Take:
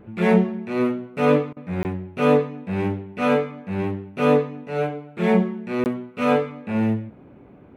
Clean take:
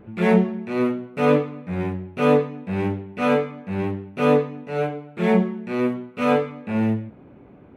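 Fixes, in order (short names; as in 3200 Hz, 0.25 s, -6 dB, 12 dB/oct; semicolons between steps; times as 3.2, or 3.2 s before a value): interpolate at 1.83/5.84, 19 ms; interpolate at 1.53, 35 ms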